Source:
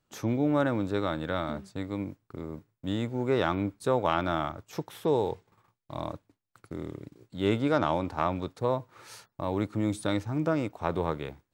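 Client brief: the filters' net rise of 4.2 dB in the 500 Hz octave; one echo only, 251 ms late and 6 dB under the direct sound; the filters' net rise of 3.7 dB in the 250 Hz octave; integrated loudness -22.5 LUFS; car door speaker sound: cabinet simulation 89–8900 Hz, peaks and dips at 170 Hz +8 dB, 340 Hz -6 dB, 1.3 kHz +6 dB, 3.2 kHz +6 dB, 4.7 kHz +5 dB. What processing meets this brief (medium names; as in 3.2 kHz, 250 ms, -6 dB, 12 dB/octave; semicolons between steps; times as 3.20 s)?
cabinet simulation 89–8900 Hz, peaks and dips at 170 Hz +8 dB, 340 Hz -6 dB, 1.3 kHz +6 dB, 3.2 kHz +6 dB, 4.7 kHz +5 dB; peaking EQ 250 Hz +4 dB; peaking EQ 500 Hz +5 dB; delay 251 ms -6 dB; trim +3 dB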